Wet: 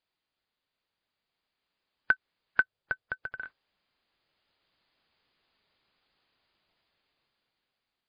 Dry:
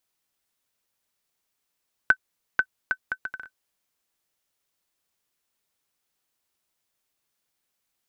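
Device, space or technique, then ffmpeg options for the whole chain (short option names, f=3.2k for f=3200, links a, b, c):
low-bitrate web radio: -filter_complex "[0:a]asettb=1/sr,asplit=3[a][b][c];[a]atrim=end=2.624[d];[b]atrim=start=2.62:end=3.4,asetpts=PTS-STARTPTS,afade=t=in:d=0.004:c=qsin,afade=t=out:st=0.776:d=0.004:c=qsin,equalizer=f=125:t=o:w=1:g=6,equalizer=f=250:t=o:w=1:g=-11,equalizer=f=500:t=o:w=1:g=5,equalizer=f=1k:t=o:w=1:g=-6,equalizer=f=2k:t=o:w=1:g=-6,equalizer=f=4k:t=o:w=1:g=-6[e];[c]atrim=start=3.396[f];[d][e]acrossfade=d=0.004:c1=hsin:c2=qsin[g];[g][f]acrossfade=d=0.004:c1=qsin:c2=hsin,dynaudnorm=f=580:g=5:m=11.5dB,alimiter=limit=-7.5dB:level=0:latency=1:release=170,volume=-2dB" -ar 11025 -c:a libmp3lame -b:a 24k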